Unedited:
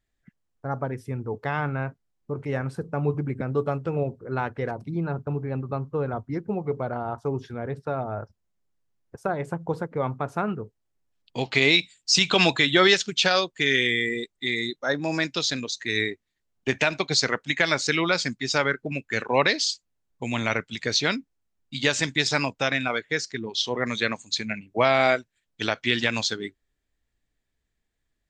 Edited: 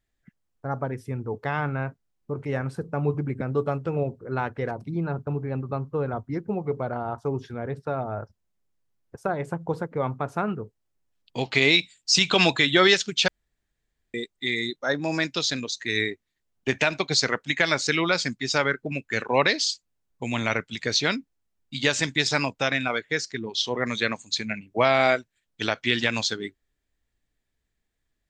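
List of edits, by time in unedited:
0:13.28–0:14.14: fill with room tone

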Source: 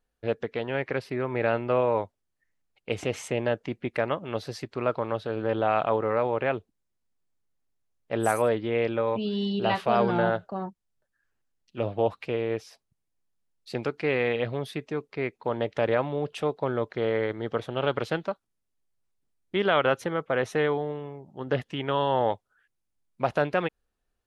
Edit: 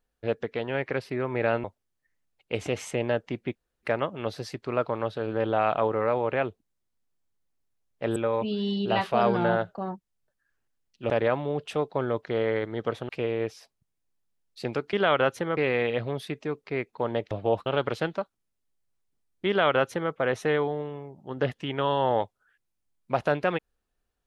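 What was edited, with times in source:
0:01.64–0:02.01: remove
0:03.92: splice in room tone 0.28 s
0:08.25–0:08.90: remove
0:11.84–0:12.19: swap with 0:15.77–0:17.76
0:19.58–0:20.22: duplicate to 0:14.03

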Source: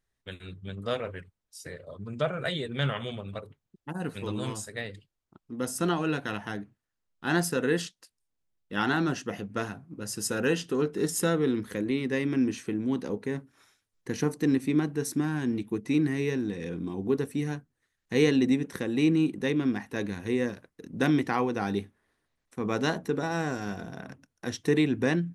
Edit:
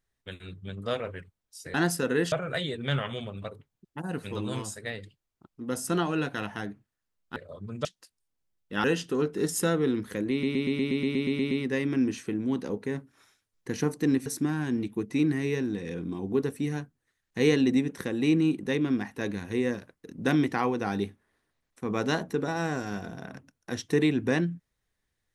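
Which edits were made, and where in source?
0:01.74–0:02.23: swap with 0:07.27–0:07.85
0:08.84–0:10.44: remove
0:11.91: stutter 0.12 s, 11 plays
0:14.66–0:15.01: remove

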